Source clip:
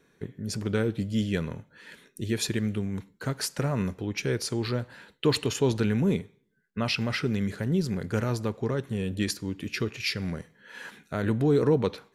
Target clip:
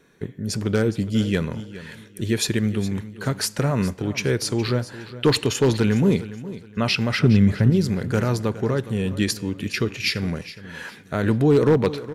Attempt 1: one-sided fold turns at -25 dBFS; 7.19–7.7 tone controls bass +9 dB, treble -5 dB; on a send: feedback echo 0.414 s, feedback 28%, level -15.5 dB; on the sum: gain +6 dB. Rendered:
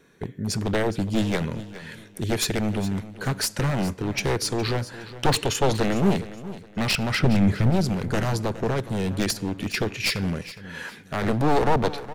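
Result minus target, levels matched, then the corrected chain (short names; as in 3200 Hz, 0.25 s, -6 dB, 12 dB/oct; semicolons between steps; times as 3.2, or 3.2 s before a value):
one-sided fold: distortion +22 dB
one-sided fold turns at -15 dBFS; 7.19–7.7 tone controls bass +9 dB, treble -5 dB; on a send: feedback echo 0.414 s, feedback 28%, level -15.5 dB; on the sum: gain +6 dB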